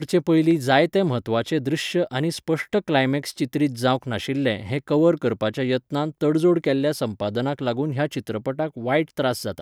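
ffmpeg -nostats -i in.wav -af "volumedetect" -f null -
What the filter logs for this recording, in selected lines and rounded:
mean_volume: -22.2 dB
max_volume: -3.2 dB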